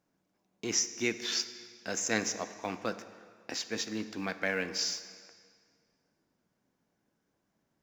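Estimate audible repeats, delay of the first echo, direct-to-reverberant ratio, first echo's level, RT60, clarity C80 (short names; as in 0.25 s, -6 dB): none, none, 11.0 dB, none, 2.1 s, 13.0 dB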